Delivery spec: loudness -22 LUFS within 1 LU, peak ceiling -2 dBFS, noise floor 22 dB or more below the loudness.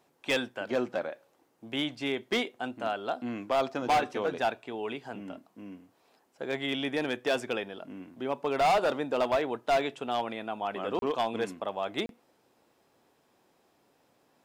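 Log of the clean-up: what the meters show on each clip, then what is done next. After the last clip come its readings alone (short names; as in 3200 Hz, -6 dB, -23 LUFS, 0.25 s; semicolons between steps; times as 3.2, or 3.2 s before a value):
clipped 1.2%; flat tops at -21.0 dBFS; dropouts 2; longest dropout 32 ms; loudness -31.0 LUFS; peak -21.0 dBFS; loudness target -22.0 LUFS
-> clip repair -21 dBFS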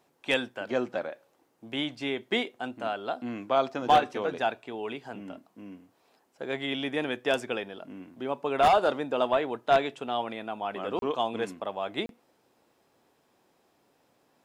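clipped 0.0%; dropouts 2; longest dropout 32 ms
-> interpolate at 10.99/12.06, 32 ms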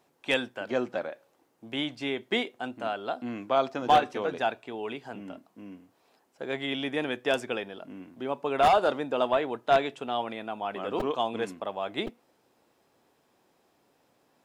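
dropouts 0; loudness -29.5 LUFS; peak -12.0 dBFS; loudness target -22.0 LUFS
-> gain +7.5 dB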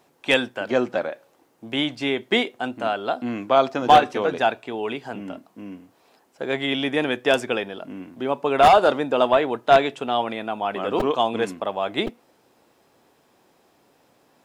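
loudness -22.0 LUFS; peak -4.5 dBFS; noise floor -62 dBFS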